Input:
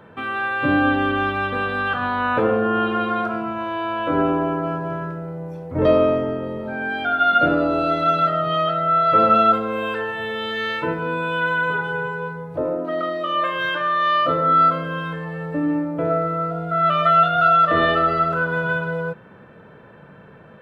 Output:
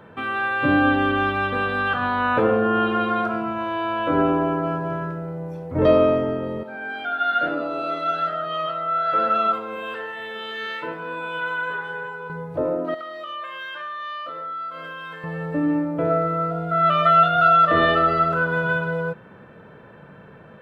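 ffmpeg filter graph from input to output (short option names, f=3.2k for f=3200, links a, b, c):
-filter_complex "[0:a]asettb=1/sr,asplit=3[a][b][c];[a]atrim=end=6.634[d];[b]atrim=start=6.63:end=12.3,asetpts=PTS-STARTPTS,afade=t=in:d=0.004:c=qsin,afade=t=out:st=5.666:d=0.004:c=qsin,highpass=f=440:p=1,flanger=delay=2.9:depth=7.9:regen=88:speed=1.1:shape=triangular[e];[c]atrim=start=12.296[f];[d][e]acrossfade=d=0.004:c1=hsin:c2=qsin[g];[g][f]acrossfade=d=0.004:c1=qsin:c2=hsin,asettb=1/sr,asplit=3[h][i][j];[h]atrim=end=12.944[k];[i]atrim=start=12.94:end=15.24,asetpts=PTS-STARTPTS,afade=t=in:d=0.004:c=qsin,afade=t=out:st=2.296:d=0.004:c=qsin,highpass=f=1.2k:p=1,acompressor=threshold=-30dB:ratio=6:attack=3.2:release=140:knee=1:detection=peak[l];[j]atrim=start=15.236[m];[k][l]acrossfade=d=0.004:c1=hsin:c2=qsin[n];[n][m]acrossfade=d=0.004:c1=qsin:c2=hsin"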